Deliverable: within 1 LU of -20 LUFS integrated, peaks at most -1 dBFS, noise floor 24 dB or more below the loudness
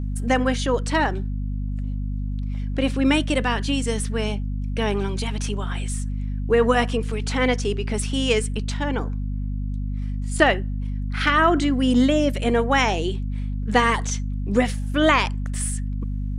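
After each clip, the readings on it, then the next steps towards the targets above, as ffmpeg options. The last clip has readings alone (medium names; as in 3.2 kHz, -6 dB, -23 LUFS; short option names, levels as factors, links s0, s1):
hum 50 Hz; highest harmonic 250 Hz; hum level -24 dBFS; loudness -23.0 LUFS; peak level -2.0 dBFS; loudness target -20.0 LUFS
-> -af "bandreject=f=50:t=h:w=6,bandreject=f=100:t=h:w=6,bandreject=f=150:t=h:w=6,bandreject=f=200:t=h:w=6,bandreject=f=250:t=h:w=6"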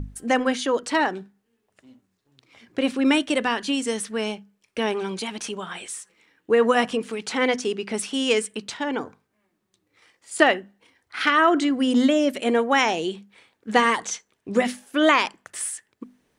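hum not found; loudness -23.0 LUFS; peak level -1.5 dBFS; loudness target -20.0 LUFS
-> -af "volume=1.41,alimiter=limit=0.891:level=0:latency=1"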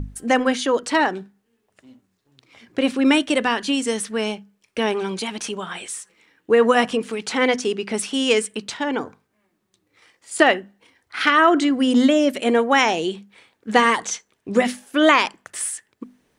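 loudness -20.0 LUFS; peak level -1.0 dBFS; noise floor -71 dBFS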